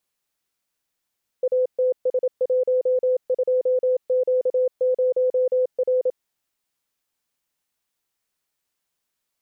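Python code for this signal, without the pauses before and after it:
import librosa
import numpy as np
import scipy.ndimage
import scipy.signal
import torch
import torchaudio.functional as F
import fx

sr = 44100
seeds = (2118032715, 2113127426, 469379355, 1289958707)

y = fx.morse(sr, text='ATS12Q0R', wpm=27, hz=508.0, level_db=-16.5)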